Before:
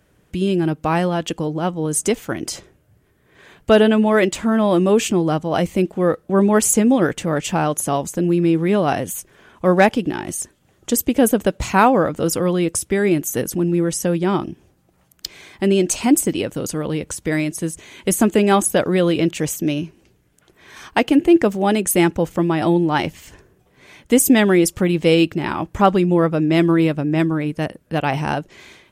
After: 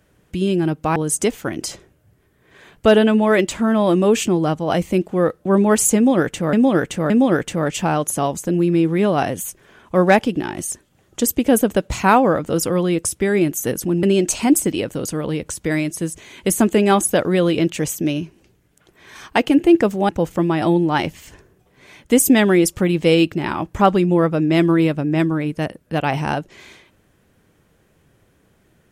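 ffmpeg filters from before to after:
-filter_complex "[0:a]asplit=6[a][b][c][d][e][f];[a]atrim=end=0.962[g];[b]atrim=start=1.798:end=7.372[h];[c]atrim=start=6.798:end=7.372[i];[d]atrim=start=6.798:end=13.732[j];[e]atrim=start=15.638:end=21.702[k];[f]atrim=start=22.088[l];[g][h]acrossfade=d=0.004:c1=hsin:c2=hsin[m];[m][i]acrossfade=d=0.004:c1=hsin:c2=hsin[n];[n][j]acrossfade=d=0.004:c1=hsin:c2=hsin[o];[o][k]acrossfade=d=0.004:c1=hsin:c2=hsin[p];[p][l]acrossfade=d=0.004:c1=hsin:c2=hsin"

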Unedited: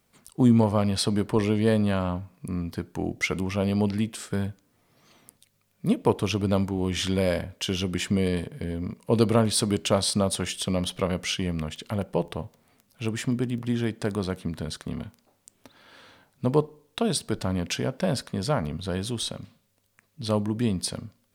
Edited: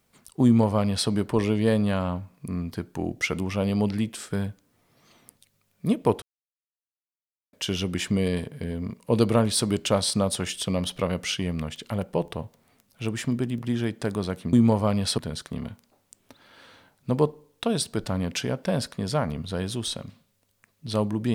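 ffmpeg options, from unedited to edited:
-filter_complex "[0:a]asplit=5[a][b][c][d][e];[a]atrim=end=6.22,asetpts=PTS-STARTPTS,afade=t=out:st=6.216:d=0.004:c=hsin[f];[b]atrim=start=6.22:end=7.53,asetpts=PTS-STARTPTS,volume=0[g];[c]atrim=start=7.53:end=14.532,asetpts=PTS-STARTPTS,afade=t=in:d=0.004:c=hsin[h];[d]atrim=start=0.438:end=1.092[i];[e]atrim=start=14.528[j];[f][g][h]concat=n=3:v=0:a=1[k];[k][i]acrossfade=d=0.004:c1=hsin:c2=hsin[l];[l][j]acrossfade=d=0.004:c1=hsin:c2=hsin"

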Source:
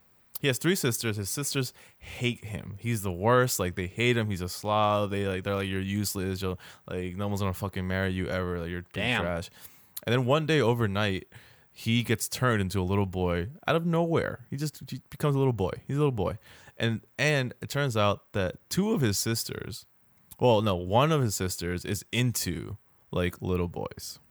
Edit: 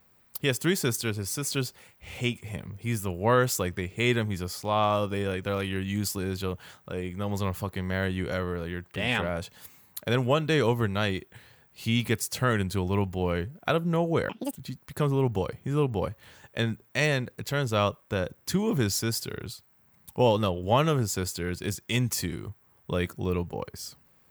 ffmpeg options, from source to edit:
-filter_complex "[0:a]asplit=3[a][b][c];[a]atrim=end=14.294[d];[b]atrim=start=14.29:end=14.8,asetpts=PTS-STARTPTS,asetrate=81585,aresample=44100,atrim=end_sample=12157,asetpts=PTS-STARTPTS[e];[c]atrim=start=14.796[f];[d][e]acrossfade=d=0.004:c1=hsin:c2=hsin[g];[g][f]acrossfade=d=0.004:c1=hsin:c2=hsin"

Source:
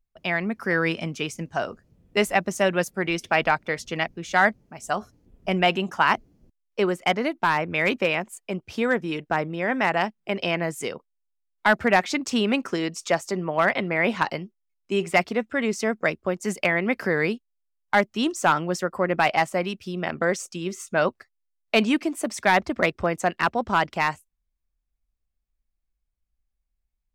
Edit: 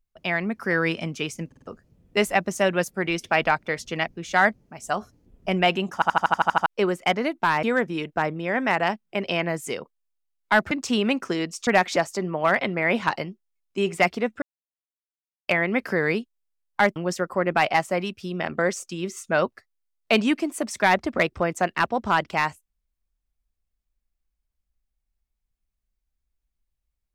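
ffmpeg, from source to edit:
-filter_complex "[0:a]asplit=21[a][b][c][d][e][f][g][h][i][j][k][l][m][n][o][p][q][r][s][t][u];[a]atrim=end=1.522[v];[b]atrim=start=1.468:end=1.522[w];[c]atrim=start=1.468:end=1.522[x];[d]atrim=start=1.468:end=1.522[y];[e]atrim=start=1.668:end=6.022[z];[f]atrim=start=5.938:end=6.022[aa];[g]atrim=start=5.938:end=6.022[ab];[h]atrim=start=5.938:end=6.022[ac];[i]atrim=start=5.938:end=6.022[ad];[j]atrim=start=5.938:end=6.022[ae];[k]atrim=start=5.938:end=6.022[af];[l]atrim=start=5.938:end=6.022[ag];[m]atrim=start=5.938:end=6.022[ah];[n]atrim=start=6.658:end=7.632[ai];[o]atrim=start=8.768:end=11.852[aj];[p]atrim=start=12.138:end=13.102[ak];[q]atrim=start=11.848:end=12.142[al];[r]atrim=start=13.098:end=15.56,asetpts=PTS-STARTPTS,afade=t=out:st=2.458:d=0.004:c=hsin[am];[s]atrim=start=15.56:end=16.62,asetpts=PTS-STARTPTS,volume=0[an];[t]atrim=start=16.62:end=18.102,asetpts=PTS-STARTPTS,afade=t=in:d=0.004:c=hsin[ao];[u]atrim=start=18.588[ap];[v][w]acrossfade=d=0.004:c1=hsin:c2=hsin[aq];[aq][x]acrossfade=d=0.004:c1=hsin:c2=hsin[ar];[ar][y]acrossfade=d=0.004:c1=hsin:c2=hsin[as];[as][z]acrossfade=d=0.004:c1=hsin:c2=hsin[at];[at][aa]acrossfade=d=0.004:c1=hsin:c2=hsin[au];[au][ab]acrossfade=d=0.004:c1=hsin:c2=hsin[av];[av][ac]acrossfade=d=0.004:c1=hsin:c2=hsin[aw];[aw][ad]acrossfade=d=0.004:c1=hsin:c2=hsin[ax];[ax][ae]acrossfade=d=0.004:c1=hsin:c2=hsin[ay];[ay][af]acrossfade=d=0.004:c1=hsin:c2=hsin[az];[az][ag]acrossfade=d=0.004:c1=hsin:c2=hsin[ba];[ba][ah]acrossfade=d=0.004:c1=hsin:c2=hsin[bb];[bb][ai]acrossfade=d=0.004:c1=hsin:c2=hsin[bc];[bc][aj]acrossfade=d=0.004:c1=hsin:c2=hsin[bd];[bd][ak]acrossfade=d=0.004:c1=hsin:c2=hsin[be];[be][al]acrossfade=d=0.004:c1=hsin:c2=hsin[bf];[am][an][ao]concat=n=3:v=0:a=1[bg];[bf][bg]acrossfade=d=0.004:c1=hsin:c2=hsin[bh];[bh][ap]acrossfade=d=0.004:c1=hsin:c2=hsin"

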